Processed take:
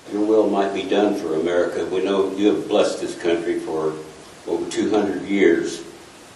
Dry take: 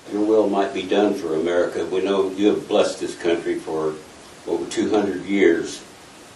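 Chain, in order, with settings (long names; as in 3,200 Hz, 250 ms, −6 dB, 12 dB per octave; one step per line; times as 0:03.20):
feedback echo with a low-pass in the loop 71 ms, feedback 64%, low-pass 2,000 Hz, level −12.5 dB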